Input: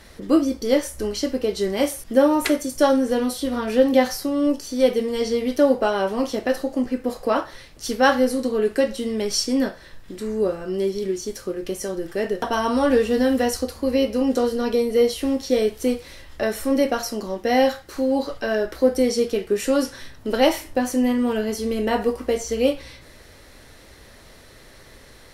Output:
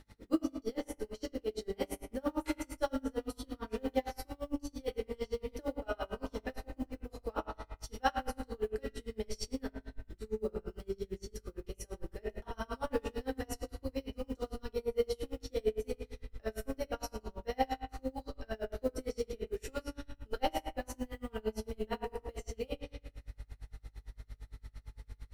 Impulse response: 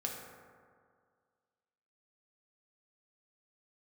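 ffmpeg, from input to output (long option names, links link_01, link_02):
-filter_complex "[0:a]acrusher=bits=8:mode=log:mix=0:aa=0.000001,aeval=exprs='val(0)+0.0126*(sin(2*PI*50*n/s)+sin(2*PI*2*50*n/s)/2+sin(2*PI*3*50*n/s)/3+sin(2*PI*4*50*n/s)/4+sin(2*PI*5*50*n/s)/5)':channel_layout=same,asubboost=boost=7.5:cutoff=74[link_01];[1:a]atrim=start_sample=2205,asetrate=74970,aresample=44100[link_02];[link_01][link_02]afir=irnorm=-1:irlink=0,aeval=exprs='val(0)*pow(10,-32*(0.5-0.5*cos(2*PI*8.8*n/s))/20)':channel_layout=same,volume=-7dB"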